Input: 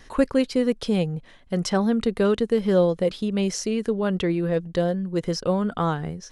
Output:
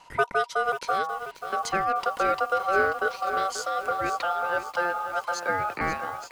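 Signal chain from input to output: ring modulator 960 Hz; 4.19–5.81 s: frequency shift +86 Hz; bit-crushed delay 536 ms, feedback 55%, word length 7-bit, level -10 dB; trim -1.5 dB

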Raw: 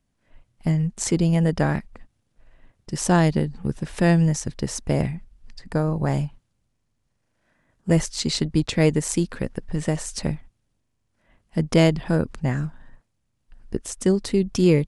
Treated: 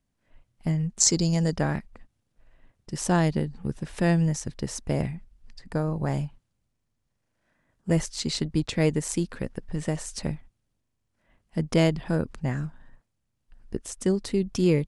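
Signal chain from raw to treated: 1.00–1.56 s: high-order bell 5.5 kHz +14 dB 1.1 oct; trim -4.5 dB

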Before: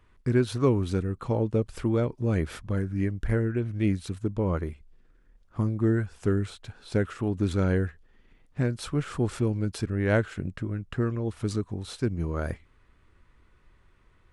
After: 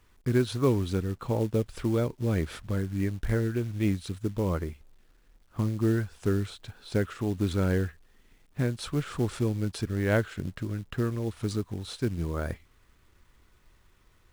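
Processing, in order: peaking EQ 3.7 kHz +3.5 dB 0.65 oct; companded quantiser 6-bit; trim -1.5 dB

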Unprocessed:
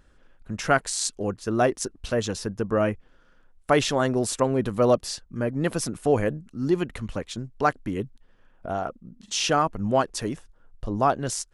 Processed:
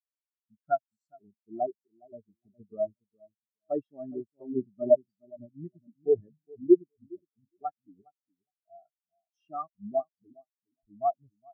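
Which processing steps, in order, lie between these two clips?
comb of notches 500 Hz; filtered feedback delay 413 ms, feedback 41%, low-pass 1.6 kHz, level -6 dB; spectral contrast expander 4:1

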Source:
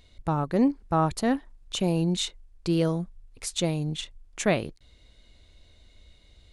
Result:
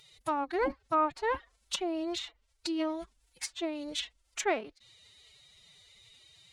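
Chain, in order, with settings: tilt EQ +3 dB/octave; low-pass that closes with the level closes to 1.5 kHz, closed at -23.5 dBFS; formant-preserving pitch shift +11.5 st; bass shelf 370 Hz -6 dB

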